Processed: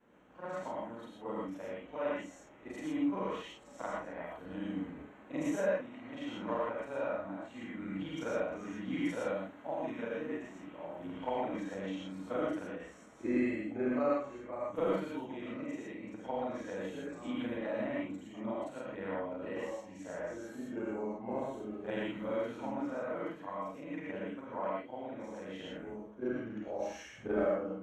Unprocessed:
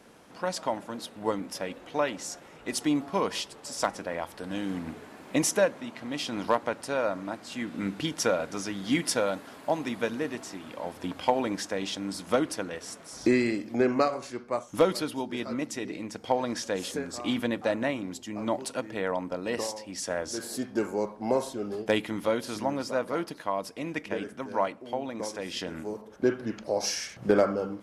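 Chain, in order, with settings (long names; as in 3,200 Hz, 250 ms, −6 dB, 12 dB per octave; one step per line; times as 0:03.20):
every overlapping window played backwards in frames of 104 ms
moving average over 9 samples
reverb whose tail is shaped and stops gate 140 ms rising, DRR −3.5 dB
level −9 dB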